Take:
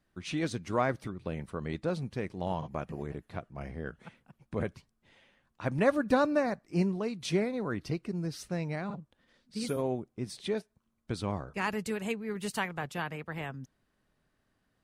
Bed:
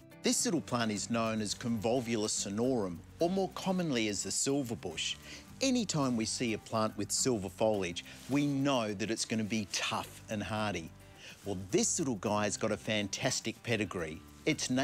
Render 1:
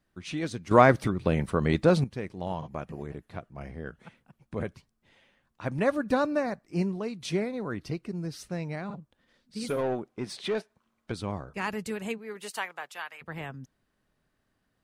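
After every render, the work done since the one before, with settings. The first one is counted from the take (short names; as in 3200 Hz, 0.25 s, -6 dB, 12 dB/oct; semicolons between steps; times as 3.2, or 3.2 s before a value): 0.71–2.04 gain +11 dB; 9.7–11.12 overdrive pedal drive 17 dB, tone 2600 Hz, clips at -20 dBFS; 12.17–13.21 HPF 290 Hz -> 1200 Hz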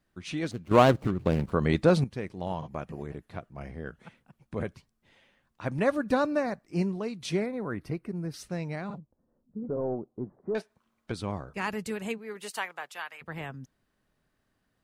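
0.51–1.52 median filter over 25 samples; 7.46–8.34 band shelf 4700 Hz -9 dB; 8.98–10.55 Gaussian blur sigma 10 samples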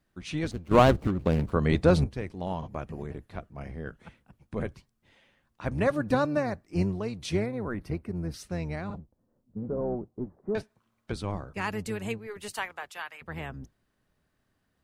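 octaver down 1 oct, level -4 dB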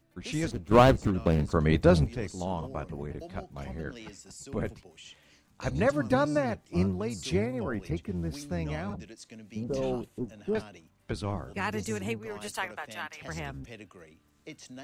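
add bed -14 dB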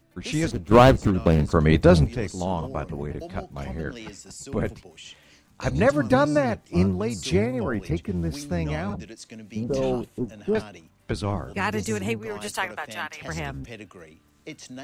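gain +6 dB; limiter -3 dBFS, peak gain reduction 2.5 dB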